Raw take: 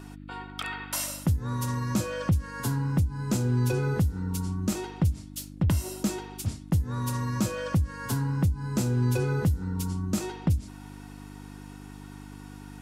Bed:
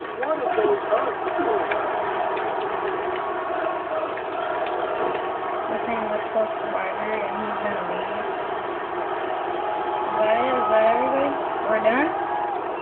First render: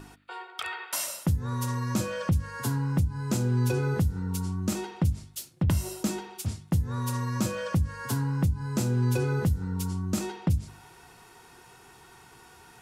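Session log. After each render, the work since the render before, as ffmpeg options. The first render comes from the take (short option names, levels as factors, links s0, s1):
-af "bandreject=f=50:t=h:w=4,bandreject=f=100:t=h:w=4,bandreject=f=150:t=h:w=4,bandreject=f=200:t=h:w=4,bandreject=f=250:t=h:w=4,bandreject=f=300:t=h:w=4"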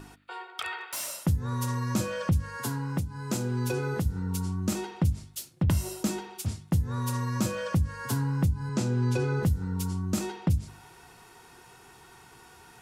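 -filter_complex "[0:a]asettb=1/sr,asplit=3[s0][s1][s2];[s0]atrim=end=0.784[s3];[s1]atrim=start=0.78:end=1.26,asetpts=PTS-STARTPTS,afade=t=in:d=0.004:c=qsin,afade=t=out:st=0.476:d=0.004:c=qsin,volume=37.6,asoftclip=hard,volume=0.0266[s4];[s2]atrim=start=1.256[s5];[s3][s4]acrossfade=d=0.004:c1=hsin:c2=qsin[s6];[s6][s5]acrossfade=d=0.004:c1=qsin:c2=hsin,asettb=1/sr,asplit=3[s7][s8][s9];[s7]atrim=end=2.574[s10];[s8]atrim=start=2.57:end=4.06,asetpts=PTS-STARTPTS,afade=t=in:d=0.004:c=qsin,afade=t=out:st=1.486:d=0.004:c=qsin,lowshelf=f=120:g=-11.5[s11];[s9]atrim=start=4.056[s12];[s10][s11]acrossfade=d=0.004:c1=hsin:c2=qsin[s13];[s13][s12]acrossfade=d=0.004:c1=qsin:c2=hsin,asettb=1/sr,asplit=3[s14][s15][s16];[s14]atrim=end=8.694[s17];[s15]atrim=start=8.69:end=9.43,asetpts=PTS-STARTPTS,afade=t=in:d=0.004:c=qsin,afade=t=out:st=0.736:d=0.004:c=qsin,highpass=100,lowpass=7300[s18];[s16]atrim=start=9.426[s19];[s17][s18]acrossfade=d=0.004:c1=hsin:c2=qsin[s20];[s20][s19]acrossfade=d=0.004:c1=qsin:c2=hsin"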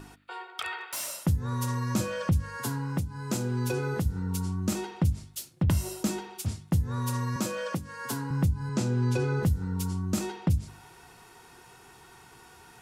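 -filter_complex "[0:a]asettb=1/sr,asplit=3[s0][s1][s2];[s0]atrim=end=7.364[s3];[s1]atrim=start=7.36:end=8.31,asetpts=PTS-STARTPTS,afade=t=in:d=0.004:c=qsin,afade=t=out:st=0.946:d=0.004:c=qsin,highpass=220[s4];[s2]atrim=start=8.306[s5];[s3][s4]acrossfade=d=0.004:c1=hsin:c2=qsin[s6];[s6][s5]acrossfade=d=0.004:c1=qsin:c2=hsin"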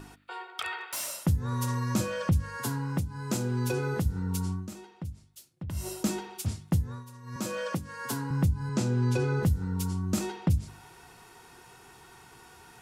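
-filter_complex "[0:a]asplit=5[s0][s1][s2][s3][s4];[s0]atrim=end=4.68,asetpts=PTS-STARTPTS,afade=t=out:st=4.52:d=0.16:silence=0.223872[s5];[s1]atrim=start=4.68:end=5.72,asetpts=PTS-STARTPTS,volume=0.224[s6];[s2]atrim=start=5.72:end=7.05,asetpts=PTS-STARTPTS,afade=t=in:d=0.16:silence=0.223872,afade=t=out:st=1.01:d=0.32:silence=0.125893[s7];[s3]atrim=start=7.05:end=7.23,asetpts=PTS-STARTPTS,volume=0.126[s8];[s4]atrim=start=7.23,asetpts=PTS-STARTPTS,afade=t=in:d=0.32:silence=0.125893[s9];[s5][s6][s7][s8][s9]concat=n=5:v=0:a=1"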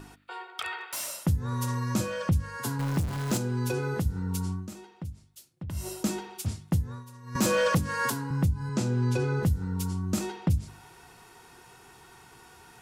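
-filter_complex "[0:a]asettb=1/sr,asplit=3[s0][s1][s2];[s0]atrim=end=2.794[s3];[s1]atrim=start=2.79:end=3.38,asetpts=PTS-STARTPTS,afade=t=in:d=0.004:c=qsin,afade=t=out:st=0.586:d=0.004:c=qsin,aeval=exprs='val(0)+0.5*0.0299*sgn(val(0))':c=same[s4];[s2]atrim=start=3.376[s5];[s3][s4]acrossfade=d=0.004:c1=hsin:c2=qsin[s6];[s6][s5]acrossfade=d=0.004:c1=qsin:c2=hsin,asettb=1/sr,asplit=3[s7][s8][s9];[s7]atrim=end=7.354[s10];[s8]atrim=start=7.35:end=8.1,asetpts=PTS-STARTPTS,afade=t=in:d=0.004:c=qsin,afade=t=out:st=0.746:d=0.004:c=qsin,aeval=exprs='0.126*sin(PI/2*2.24*val(0)/0.126)':c=same[s11];[s9]atrim=start=8.096[s12];[s10][s11]acrossfade=d=0.004:c1=hsin:c2=qsin[s13];[s13][s12]acrossfade=d=0.004:c1=qsin:c2=hsin"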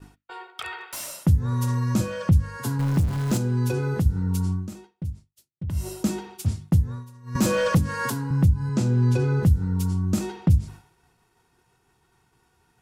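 -af "agate=range=0.0224:threshold=0.00794:ratio=3:detection=peak,lowshelf=f=260:g=8.5"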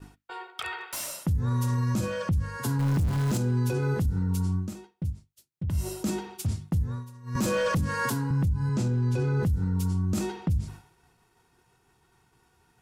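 -af "alimiter=limit=0.106:level=0:latency=1:release=24"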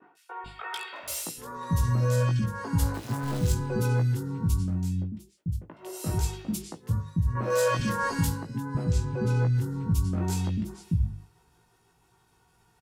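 -filter_complex "[0:a]asplit=2[s0][s1];[s1]adelay=18,volume=0.596[s2];[s0][s2]amix=inputs=2:normalize=0,acrossover=split=290|2000[s3][s4][s5];[s5]adelay=150[s6];[s3]adelay=440[s7];[s7][s4][s6]amix=inputs=3:normalize=0"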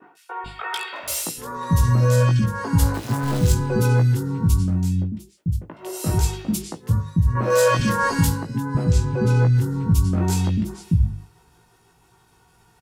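-af "volume=2.37"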